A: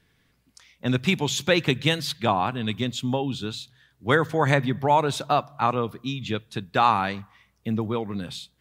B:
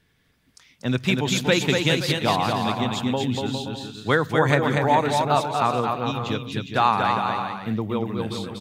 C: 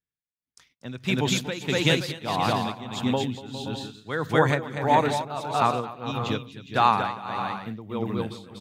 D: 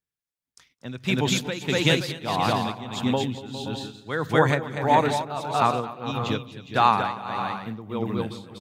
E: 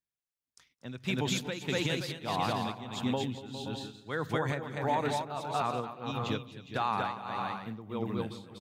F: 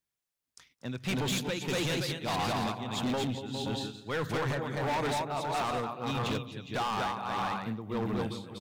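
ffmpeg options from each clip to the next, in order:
-af "aecho=1:1:240|408|525.6|607.9|665.5:0.631|0.398|0.251|0.158|0.1"
-af "agate=range=0.0282:threshold=0.00251:ratio=16:detection=peak,tremolo=f=1.6:d=0.81"
-filter_complex "[0:a]asplit=2[s0][s1];[s1]adelay=210,lowpass=f=980:p=1,volume=0.0841,asplit=2[s2][s3];[s3]adelay=210,lowpass=f=980:p=1,volume=0.52,asplit=2[s4][s5];[s5]adelay=210,lowpass=f=980:p=1,volume=0.52,asplit=2[s6][s7];[s7]adelay=210,lowpass=f=980:p=1,volume=0.52[s8];[s0][s2][s4][s6][s8]amix=inputs=5:normalize=0,volume=1.12"
-af "alimiter=limit=0.224:level=0:latency=1:release=92,volume=0.473"
-af "asoftclip=type=hard:threshold=0.0224,volume=1.78"

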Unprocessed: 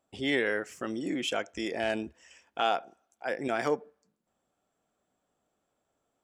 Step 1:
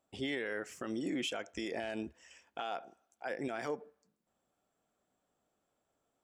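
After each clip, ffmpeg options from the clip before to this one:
-af "alimiter=level_in=1.12:limit=0.0631:level=0:latency=1:release=75,volume=0.891,volume=0.75"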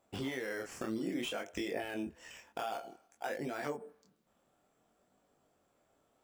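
-filter_complex "[0:a]acompressor=threshold=0.00708:ratio=4,asplit=2[s0][s1];[s1]acrusher=samples=8:mix=1:aa=0.000001:lfo=1:lforange=8:lforate=0.43,volume=0.562[s2];[s0][s2]amix=inputs=2:normalize=0,flanger=delay=20:depth=7.8:speed=0.57,volume=2.24"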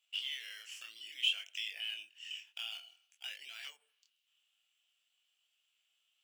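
-af "highpass=f=2900:t=q:w=9.3,volume=0.668"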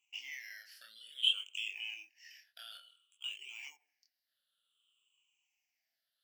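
-af "afftfilt=real='re*pow(10,23/40*sin(2*PI*(0.7*log(max(b,1)*sr/1024/100)/log(2)-(-0.56)*(pts-256)/sr)))':imag='im*pow(10,23/40*sin(2*PI*(0.7*log(max(b,1)*sr/1024/100)/log(2)-(-0.56)*(pts-256)/sr)))':win_size=1024:overlap=0.75,volume=0.422"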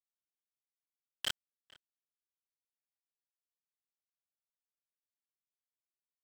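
-filter_complex "[0:a]aresample=11025,acrusher=bits=3:mix=0:aa=0.000001,aresample=44100,asoftclip=type=tanh:threshold=0.0355,asplit=2[s0][s1];[s1]adelay=454.8,volume=0.0708,highshelf=f=4000:g=-10.2[s2];[s0][s2]amix=inputs=2:normalize=0,volume=1.26"

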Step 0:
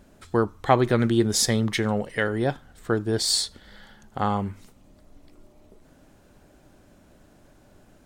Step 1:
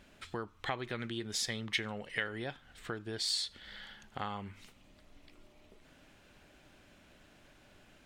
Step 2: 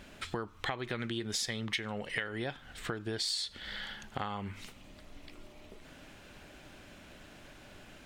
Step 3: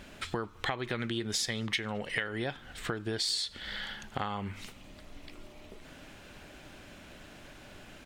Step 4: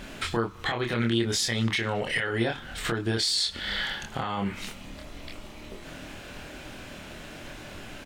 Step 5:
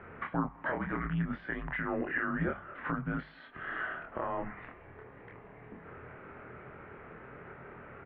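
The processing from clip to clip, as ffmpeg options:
-af "acompressor=threshold=0.0224:ratio=3,equalizer=f=2700:t=o:w=1.9:g=14,volume=0.376"
-af "acompressor=threshold=0.00794:ratio=3,volume=2.51"
-filter_complex "[0:a]asplit=2[s0][s1];[s1]adelay=215.7,volume=0.0355,highshelf=f=4000:g=-4.85[s2];[s0][s2]amix=inputs=2:normalize=0,volume=1.33"
-filter_complex "[0:a]alimiter=level_in=1.26:limit=0.0631:level=0:latency=1:release=15,volume=0.794,asplit=2[s0][s1];[s1]adelay=26,volume=0.708[s2];[s0][s2]amix=inputs=2:normalize=0,volume=2.24"
-af "highpass=f=280:t=q:w=0.5412,highpass=f=280:t=q:w=1.307,lowpass=f=2100:t=q:w=0.5176,lowpass=f=2100:t=q:w=0.7071,lowpass=f=2100:t=q:w=1.932,afreqshift=-180,bandreject=f=50:t=h:w=6,bandreject=f=100:t=h:w=6,bandreject=f=150:t=h:w=6,bandreject=f=200:t=h:w=6,volume=0.708"

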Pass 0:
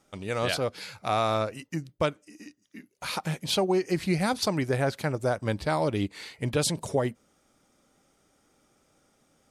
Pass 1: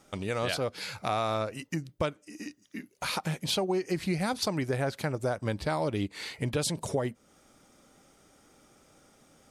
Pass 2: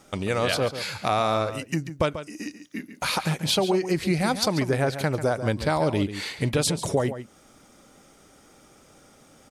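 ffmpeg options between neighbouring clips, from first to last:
-af "acompressor=threshold=0.01:ratio=2,volume=2"
-filter_complex "[0:a]asplit=2[s0][s1];[s1]adelay=139.9,volume=0.282,highshelf=f=4000:g=-3.15[s2];[s0][s2]amix=inputs=2:normalize=0,volume=2"

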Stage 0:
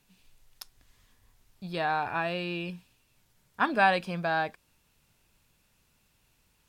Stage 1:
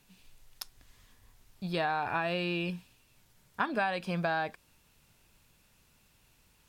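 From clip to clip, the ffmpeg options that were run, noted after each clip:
-af "acompressor=threshold=0.0316:ratio=8,volume=1.41"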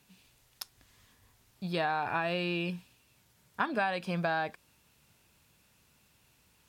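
-af "highpass=63"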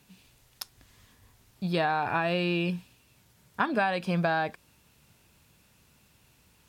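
-af "lowshelf=f=460:g=3.5,volume=1.41"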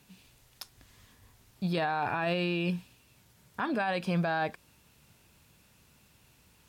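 -af "alimiter=limit=0.0794:level=0:latency=1:release=11"

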